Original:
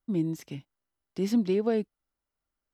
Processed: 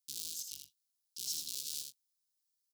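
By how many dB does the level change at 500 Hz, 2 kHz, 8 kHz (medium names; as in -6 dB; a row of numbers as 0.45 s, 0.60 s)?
under -40 dB, -17.0 dB, +12.0 dB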